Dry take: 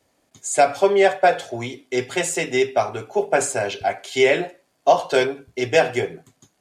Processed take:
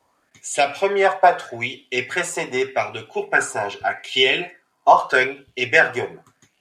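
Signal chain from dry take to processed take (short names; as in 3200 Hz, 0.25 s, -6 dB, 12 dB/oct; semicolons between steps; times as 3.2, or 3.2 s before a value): 3.1–4.93 notch comb 570 Hz; LFO bell 0.82 Hz 970–3100 Hz +17 dB; gain -4 dB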